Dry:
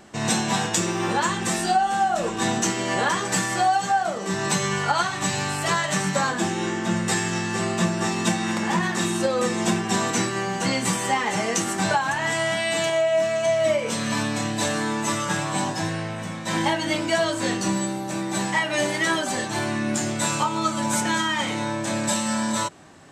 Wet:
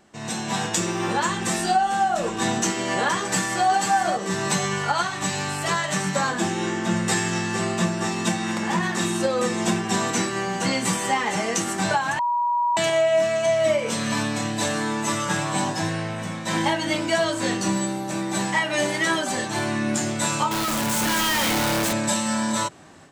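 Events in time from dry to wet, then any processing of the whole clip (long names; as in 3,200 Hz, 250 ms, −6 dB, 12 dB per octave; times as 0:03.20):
0:03.20–0:03.67: delay throw 490 ms, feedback 35%, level −5 dB
0:12.19–0:12.77: beep over 962 Hz −19.5 dBFS
0:20.51–0:21.93: sign of each sample alone
whole clip: mains-hum notches 60/120 Hz; automatic gain control gain up to 11.5 dB; level −8.5 dB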